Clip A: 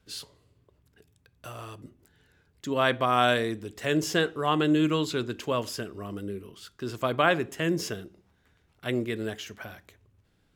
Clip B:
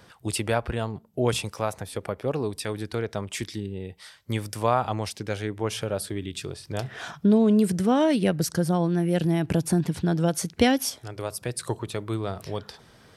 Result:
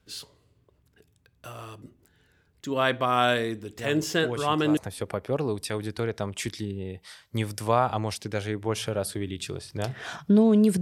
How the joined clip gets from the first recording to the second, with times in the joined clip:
clip A
0:03.79: mix in clip B from 0:00.74 0.98 s −9 dB
0:04.77: continue with clip B from 0:01.72

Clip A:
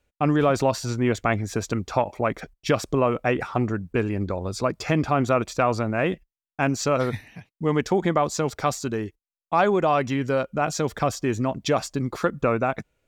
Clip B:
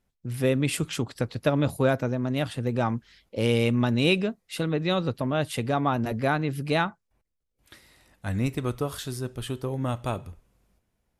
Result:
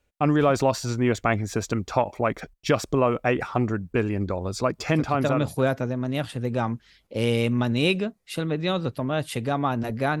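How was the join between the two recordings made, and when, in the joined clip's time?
clip A
0:05.21: continue with clip B from 0:01.43, crossfade 0.86 s equal-power

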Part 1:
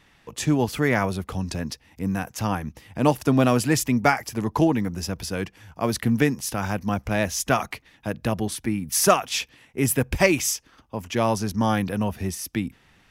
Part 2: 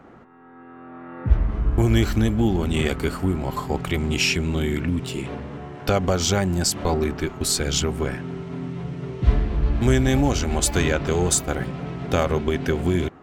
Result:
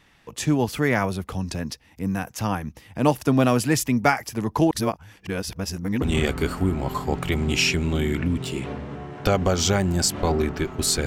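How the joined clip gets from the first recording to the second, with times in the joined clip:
part 1
0:04.71–0:06.02: reverse
0:06.02: continue with part 2 from 0:02.64

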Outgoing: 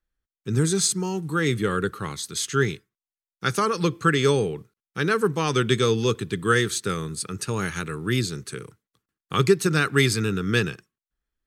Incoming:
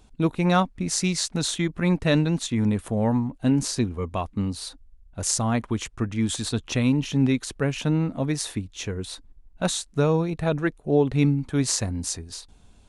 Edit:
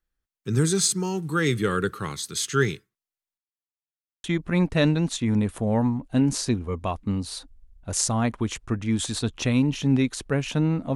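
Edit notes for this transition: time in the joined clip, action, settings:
outgoing
0:03.38–0:04.24: silence
0:04.24: continue with incoming from 0:01.54

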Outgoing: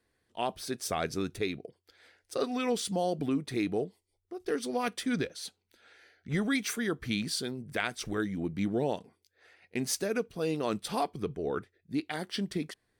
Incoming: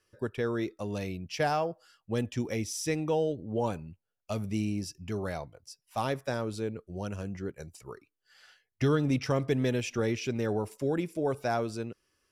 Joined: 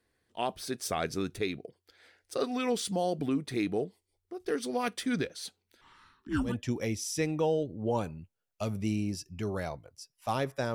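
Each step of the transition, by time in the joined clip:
outgoing
0:05.81–0:06.56: frequency shifter −470 Hz
0:06.49: continue with incoming from 0:02.18, crossfade 0.14 s

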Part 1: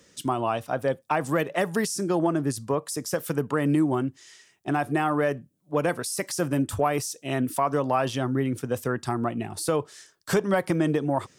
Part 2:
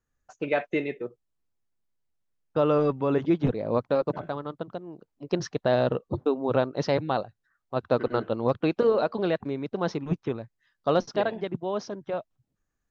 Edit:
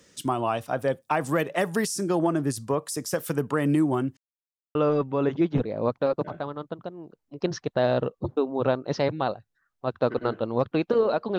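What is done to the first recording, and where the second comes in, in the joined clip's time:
part 1
0:04.17–0:04.75: silence
0:04.75: continue with part 2 from 0:02.64

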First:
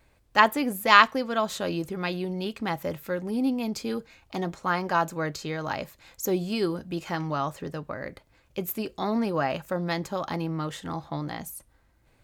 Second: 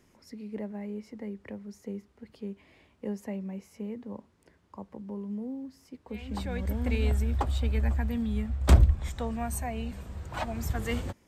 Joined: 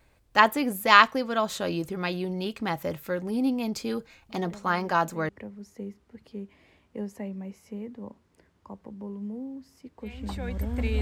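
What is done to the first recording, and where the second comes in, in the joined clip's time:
first
0:04.29: mix in second from 0:00.37 1.00 s −8.5 dB
0:05.29: continue with second from 0:01.37

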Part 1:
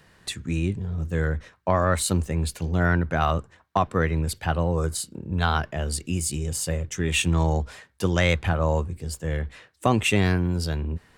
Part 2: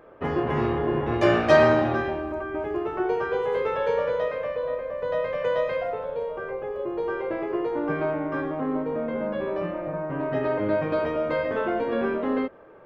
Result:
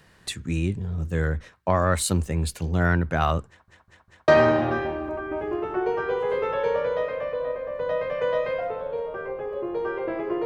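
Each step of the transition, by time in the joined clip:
part 1
0:03.48: stutter in place 0.20 s, 4 plays
0:04.28: continue with part 2 from 0:01.51

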